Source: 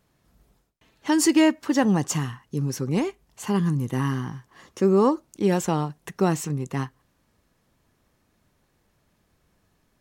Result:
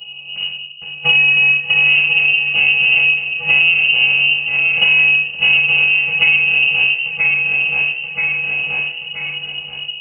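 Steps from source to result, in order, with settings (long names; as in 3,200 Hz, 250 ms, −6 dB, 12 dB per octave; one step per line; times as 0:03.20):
samples sorted by size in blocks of 128 samples
elliptic band-stop filter 330–2,200 Hz, stop band 40 dB
brickwall limiter −14 dBFS, peak gain reduction 7 dB
leveller curve on the samples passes 2
0:05.86–0:06.42: parametric band 650 Hz +11 dB 1.1 octaves
feedback echo with a high-pass in the loop 979 ms, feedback 23%, high-pass 280 Hz, level −9.5 dB
rectangular room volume 390 cubic metres, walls furnished, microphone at 7.5 metres
voice inversion scrambler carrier 2,900 Hz
multiband upward and downward compressor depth 100%
level −7 dB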